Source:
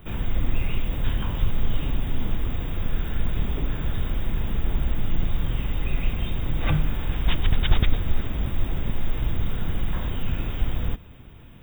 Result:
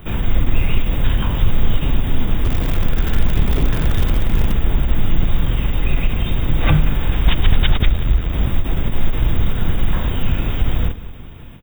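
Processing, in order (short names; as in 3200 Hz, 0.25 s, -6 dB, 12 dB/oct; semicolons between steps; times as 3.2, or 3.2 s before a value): 2.44–4.52 zero-crossing step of -31 dBFS; 7.89–8.33 ring modulator 42 Hz; on a send: feedback echo 0.182 s, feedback 50%, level -18 dB; on the sum: maximiser +9.5 dB; ending taper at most 200 dB/s; gain -1 dB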